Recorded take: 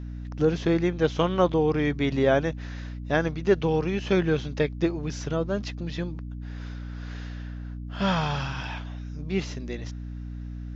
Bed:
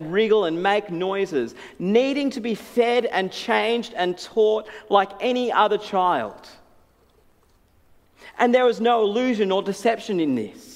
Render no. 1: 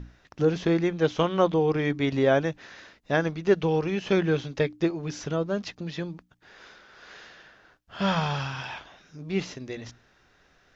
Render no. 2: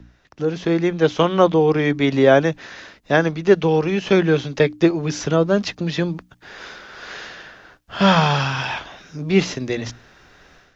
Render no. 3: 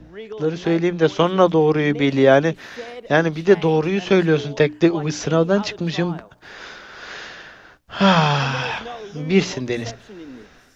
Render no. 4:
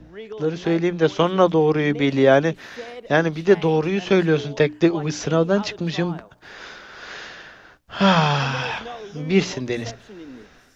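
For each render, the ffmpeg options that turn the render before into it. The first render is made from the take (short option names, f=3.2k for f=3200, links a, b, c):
-af "bandreject=f=60:t=h:w=6,bandreject=f=120:t=h:w=6,bandreject=f=180:t=h:w=6,bandreject=f=240:t=h:w=6,bandreject=f=300:t=h:w=6"
-filter_complex "[0:a]acrossover=split=120|510|1600[a][b][c][d];[a]alimiter=level_in=21dB:limit=-24dB:level=0:latency=1,volume=-21dB[e];[e][b][c][d]amix=inputs=4:normalize=0,dynaudnorm=f=480:g=3:m=13dB"
-filter_complex "[1:a]volume=-16dB[a];[0:a][a]amix=inputs=2:normalize=0"
-af "volume=-1.5dB"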